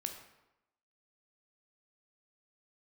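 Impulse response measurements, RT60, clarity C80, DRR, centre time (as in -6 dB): 0.90 s, 9.5 dB, 4.5 dB, 22 ms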